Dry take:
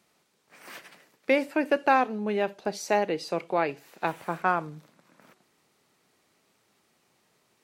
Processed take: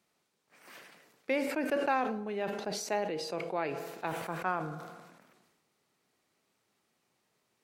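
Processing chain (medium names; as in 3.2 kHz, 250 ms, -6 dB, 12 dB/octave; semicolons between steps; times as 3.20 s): reverberation RT60 1.3 s, pre-delay 18 ms, DRR 16 dB; decay stretcher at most 43 dB/s; trim -8.5 dB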